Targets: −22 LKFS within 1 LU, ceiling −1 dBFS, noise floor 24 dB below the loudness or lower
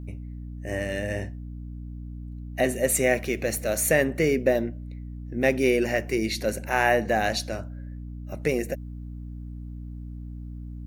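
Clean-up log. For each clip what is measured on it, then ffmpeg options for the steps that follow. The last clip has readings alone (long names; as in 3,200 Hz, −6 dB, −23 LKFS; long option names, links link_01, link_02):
mains hum 60 Hz; hum harmonics up to 300 Hz; level of the hum −34 dBFS; integrated loudness −25.0 LKFS; sample peak −7.0 dBFS; target loudness −22.0 LKFS
→ -af "bandreject=frequency=60:width_type=h:width=4,bandreject=frequency=120:width_type=h:width=4,bandreject=frequency=180:width_type=h:width=4,bandreject=frequency=240:width_type=h:width=4,bandreject=frequency=300:width_type=h:width=4"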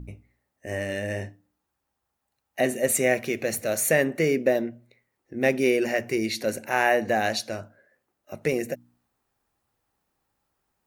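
mains hum none found; integrated loudness −25.5 LKFS; sample peak −7.5 dBFS; target loudness −22.0 LKFS
→ -af "volume=3.5dB"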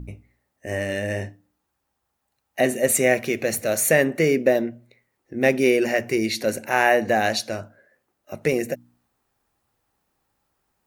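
integrated loudness −22.0 LKFS; sample peak −4.0 dBFS; background noise floor −77 dBFS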